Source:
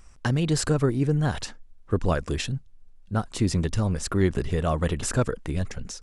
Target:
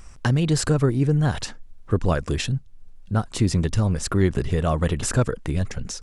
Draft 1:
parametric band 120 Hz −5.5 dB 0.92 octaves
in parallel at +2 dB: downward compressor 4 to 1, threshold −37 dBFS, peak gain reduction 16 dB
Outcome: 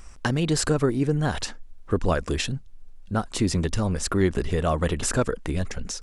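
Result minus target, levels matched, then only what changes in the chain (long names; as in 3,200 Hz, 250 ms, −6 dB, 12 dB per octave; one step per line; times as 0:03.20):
125 Hz band −3.0 dB
change: parametric band 120 Hz +3 dB 0.92 octaves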